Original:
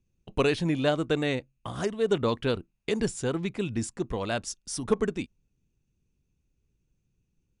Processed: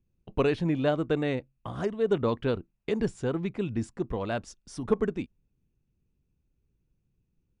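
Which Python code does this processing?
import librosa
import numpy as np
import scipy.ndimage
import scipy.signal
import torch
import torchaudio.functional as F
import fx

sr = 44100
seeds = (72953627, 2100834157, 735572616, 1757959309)

y = fx.lowpass(x, sr, hz=1600.0, slope=6)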